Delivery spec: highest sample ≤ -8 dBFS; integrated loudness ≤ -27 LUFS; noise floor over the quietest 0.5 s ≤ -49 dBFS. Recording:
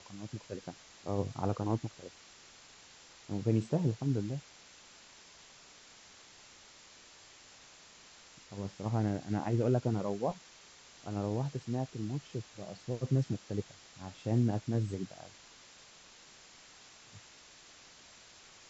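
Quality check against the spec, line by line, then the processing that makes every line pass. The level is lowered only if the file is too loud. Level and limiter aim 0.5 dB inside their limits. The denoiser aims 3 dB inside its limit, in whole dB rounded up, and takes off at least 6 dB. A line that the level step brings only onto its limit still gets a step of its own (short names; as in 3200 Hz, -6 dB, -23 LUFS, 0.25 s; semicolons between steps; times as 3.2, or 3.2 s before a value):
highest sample -17.0 dBFS: OK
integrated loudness -35.5 LUFS: OK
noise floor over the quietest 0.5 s -57 dBFS: OK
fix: none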